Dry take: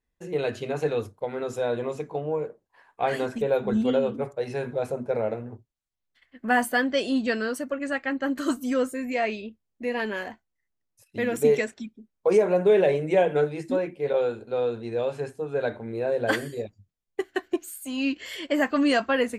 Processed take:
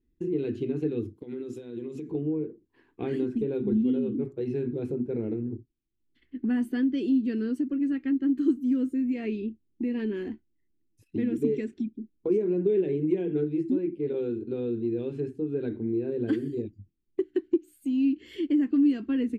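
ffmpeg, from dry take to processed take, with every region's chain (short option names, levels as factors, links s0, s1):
-filter_complex "[0:a]asettb=1/sr,asplit=3[s0][s1][s2];[s0]atrim=end=1.164[s3];[s1]atrim=start=1.16:end=2.11,asetpts=PTS-STARTPTS,afade=t=in:d=0.004:c=qsin,afade=t=out:st=0.946:d=0.004:c=qsin,highpass=120,highshelf=f=2900:g=11,acompressor=threshold=0.0112:ratio=10:attack=3.2:release=140:knee=1:detection=peak[s4];[s2]atrim=start=2.106[s5];[s3][s4]acrossfade=d=0.004:c1=hsin:c2=qsin[s6];[s6][s5]acrossfade=d=0.004:c1=qsin:c2=hsin,firequalizer=gain_entry='entry(170,0);entry(330,11);entry(580,-23);entry(2800,-9)':delay=0.05:min_phase=1,acompressor=threshold=0.01:ratio=2,bass=f=250:g=1,treble=f=4000:g=-12,volume=2.37"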